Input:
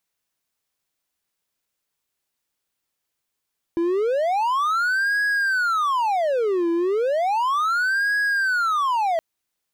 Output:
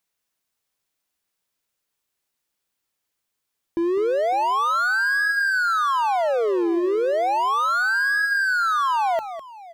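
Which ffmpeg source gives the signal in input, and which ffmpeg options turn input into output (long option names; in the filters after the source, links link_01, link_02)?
-f lavfi -i "aevalsrc='0.15*(1-4*abs(mod((998*t-662/(2*PI*0.34)*sin(2*PI*0.34*t))+0.25,1)-0.5))':duration=5.42:sample_rate=44100"
-af "bandreject=frequency=50:width_type=h:width=6,bandreject=frequency=100:width_type=h:width=6,bandreject=frequency=150:width_type=h:width=6,aecho=1:1:204|554:0.266|0.106"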